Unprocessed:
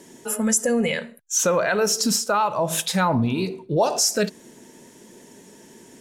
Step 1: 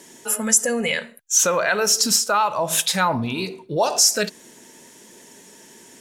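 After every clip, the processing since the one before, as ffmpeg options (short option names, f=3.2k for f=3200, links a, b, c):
-af "tiltshelf=f=670:g=-5"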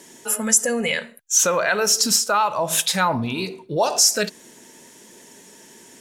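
-af anull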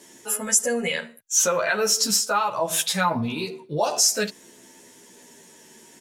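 -filter_complex "[0:a]asplit=2[a][b];[b]adelay=11.5,afreqshift=-0.47[c];[a][c]amix=inputs=2:normalize=1"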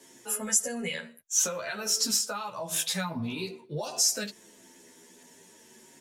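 -filter_complex "[0:a]flanger=delay=7.6:depth=4.6:regen=-24:speed=0.5:shape=sinusoidal,acrossover=split=240|3000[a][b][c];[b]acompressor=threshold=-32dB:ratio=6[d];[a][d][c]amix=inputs=3:normalize=0,volume=-1.5dB"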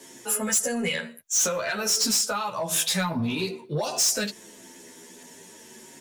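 -af "asoftclip=type=tanh:threshold=-25.5dB,volume=7.5dB"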